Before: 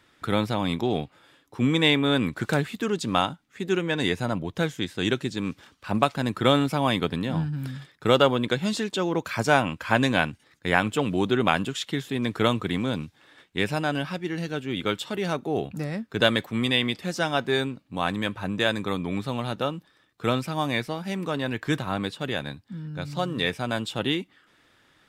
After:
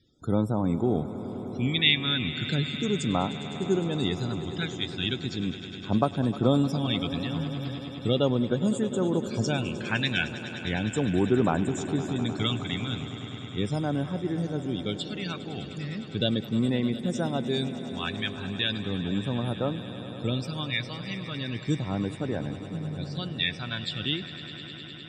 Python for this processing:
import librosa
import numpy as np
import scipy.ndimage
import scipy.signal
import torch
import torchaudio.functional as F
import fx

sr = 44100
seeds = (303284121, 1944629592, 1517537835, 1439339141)

y = fx.phaser_stages(x, sr, stages=2, low_hz=460.0, high_hz=2900.0, hz=0.37, feedback_pct=50)
y = fx.spec_topn(y, sr, count=64)
y = fx.echo_swell(y, sr, ms=102, loudest=5, wet_db=-17.0)
y = y * 10.0 ** (-1.0 / 20.0)